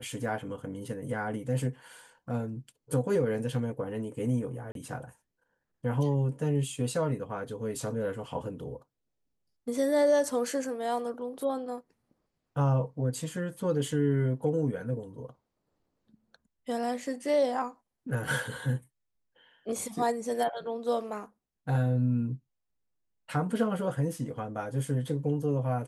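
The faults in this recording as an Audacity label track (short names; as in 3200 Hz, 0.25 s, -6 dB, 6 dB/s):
4.720000	4.750000	gap 32 ms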